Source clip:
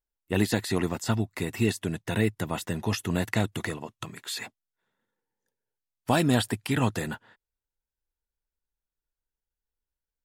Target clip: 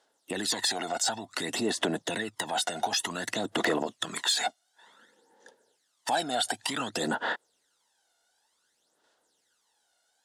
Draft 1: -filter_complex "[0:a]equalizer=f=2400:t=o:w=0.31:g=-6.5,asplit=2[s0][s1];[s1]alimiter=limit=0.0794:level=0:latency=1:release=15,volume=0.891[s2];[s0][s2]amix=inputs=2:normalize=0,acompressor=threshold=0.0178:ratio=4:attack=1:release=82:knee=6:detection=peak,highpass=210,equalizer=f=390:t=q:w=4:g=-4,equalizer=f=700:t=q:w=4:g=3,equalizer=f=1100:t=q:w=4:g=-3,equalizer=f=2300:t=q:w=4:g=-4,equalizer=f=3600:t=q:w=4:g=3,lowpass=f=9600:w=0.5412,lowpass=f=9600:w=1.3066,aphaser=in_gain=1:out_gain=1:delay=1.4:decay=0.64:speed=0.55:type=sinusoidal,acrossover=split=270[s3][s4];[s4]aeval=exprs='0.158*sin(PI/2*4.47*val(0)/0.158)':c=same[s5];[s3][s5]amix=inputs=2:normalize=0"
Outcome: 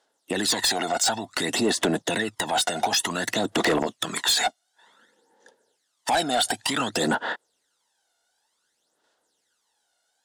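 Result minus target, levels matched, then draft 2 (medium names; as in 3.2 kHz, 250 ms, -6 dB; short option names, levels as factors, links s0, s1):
compression: peak gain reduction -7 dB
-filter_complex "[0:a]equalizer=f=2400:t=o:w=0.31:g=-6.5,asplit=2[s0][s1];[s1]alimiter=limit=0.0794:level=0:latency=1:release=15,volume=0.891[s2];[s0][s2]amix=inputs=2:normalize=0,acompressor=threshold=0.00596:ratio=4:attack=1:release=82:knee=6:detection=peak,highpass=210,equalizer=f=390:t=q:w=4:g=-4,equalizer=f=700:t=q:w=4:g=3,equalizer=f=1100:t=q:w=4:g=-3,equalizer=f=2300:t=q:w=4:g=-4,equalizer=f=3600:t=q:w=4:g=3,lowpass=f=9600:w=0.5412,lowpass=f=9600:w=1.3066,aphaser=in_gain=1:out_gain=1:delay=1.4:decay=0.64:speed=0.55:type=sinusoidal,acrossover=split=270[s3][s4];[s4]aeval=exprs='0.158*sin(PI/2*4.47*val(0)/0.158)':c=same[s5];[s3][s5]amix=inputs=2:normalize=0"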